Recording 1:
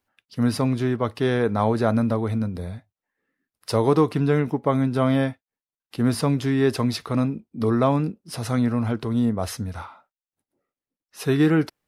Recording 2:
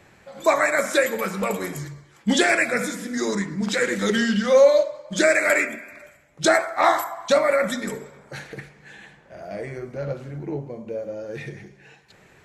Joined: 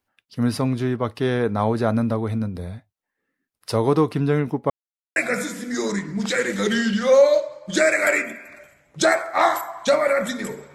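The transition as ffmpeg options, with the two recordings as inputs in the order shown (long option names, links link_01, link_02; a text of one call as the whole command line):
ffmpeg -i cue0.wav -i cue1.wav -filter_complex "[0:a]apad=whole_dur=10.74,atrim=end=10.74,asplit=2[link_01][link_02];[link_01]atrim=end=4.7,asetpts=PTS-STARTPTS,afade=type=out:start_time=4.696:duration=0.004:curve=hsin[link_03];[link_02]atrim=start=4.7:end=5.16,asetpts=PTS-STARTPTS,volume=0[link_04];[1:a]atrim=start=2.59:end=8.17,asetpts=PTS-STARTPTS,afade=type=in:duration=0.004:curve=hsin[link_05];[link_03][link_04][link_05]concat=n=3:v=0:a=1" out.wav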